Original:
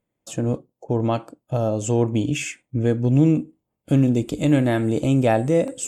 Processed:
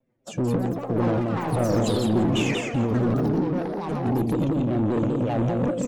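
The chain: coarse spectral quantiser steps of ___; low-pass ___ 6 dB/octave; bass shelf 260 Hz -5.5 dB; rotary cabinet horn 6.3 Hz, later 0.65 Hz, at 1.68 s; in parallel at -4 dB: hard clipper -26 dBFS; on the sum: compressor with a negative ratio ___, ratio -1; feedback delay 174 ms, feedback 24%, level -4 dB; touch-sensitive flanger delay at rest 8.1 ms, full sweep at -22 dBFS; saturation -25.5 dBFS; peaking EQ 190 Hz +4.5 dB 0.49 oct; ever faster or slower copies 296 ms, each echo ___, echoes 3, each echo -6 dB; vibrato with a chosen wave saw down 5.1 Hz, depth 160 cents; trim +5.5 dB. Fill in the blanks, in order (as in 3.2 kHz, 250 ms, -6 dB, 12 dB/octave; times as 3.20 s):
15 dB, 1.2 kHz, -26 dBFS, +7 st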